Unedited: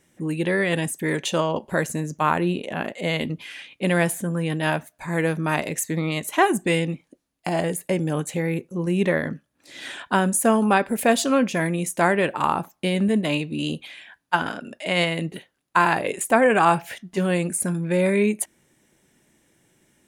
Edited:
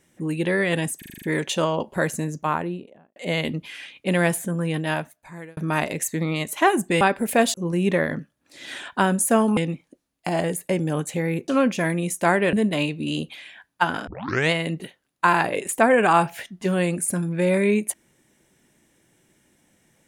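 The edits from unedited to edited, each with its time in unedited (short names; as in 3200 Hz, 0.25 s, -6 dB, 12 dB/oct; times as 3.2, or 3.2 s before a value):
0.98 stutter 0.04 s, 7 plays
1.97–2.92 studio fade out
4.5–5.33 fade out
6.77–8.68 swap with 10.71–11.24
12.29–13.05 cut
14.59 tape start 0.44 s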